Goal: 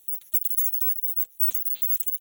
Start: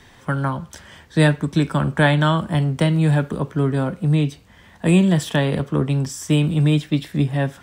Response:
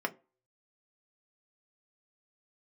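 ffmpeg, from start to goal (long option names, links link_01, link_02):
-filter_complex "[0:a]afftfilt=real='real(if(lt(b,272),68*(eq(floor(b/68),0)*3+eq(floor(b/68),1)*2+eq(floor(b/68),2)*1+eq(floor(b/68),3)*0)+mod(b,68),b),0)':imag='imag(if(lt(b,272),68*(eq(floor(b/68),0)*3+eq(floor(b/68),1)*2+eq(floor(b/68),2)*1+eq(floor(b/68),3)*0)+mod(b,68),b),0)':win_size=2048:overlap=0.75,equalizer=frequency=460:width_type=o:width=2.4:gain=-7.5,asetrate=152586,aresample=44100,asplit=2[link_01][link_02];[link_02]adelay=239.1,volume=-29dB,highshelf=frequency=4000:gain=-5.38[link_03];[link_01][link_03]amix=inputs=2:normalize=0,acrossover=split=260|4600[link_04][link_05][link_06];[link_05]aexciter=amount=2.4:drive=3.3:freq=2700[link_07];[link_04][link_07][link_06]amix=inputs=3:normalize=0,volume=-6dB"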